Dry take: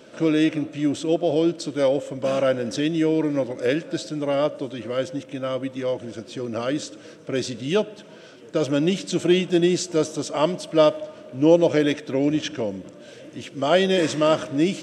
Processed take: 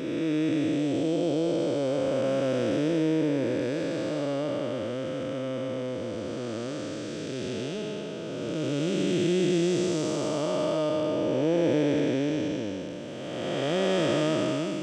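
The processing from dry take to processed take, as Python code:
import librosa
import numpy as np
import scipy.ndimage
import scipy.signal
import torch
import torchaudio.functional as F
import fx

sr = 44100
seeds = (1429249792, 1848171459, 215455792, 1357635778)

y = fx.spec_blur(x, sr, span_ms=703.0)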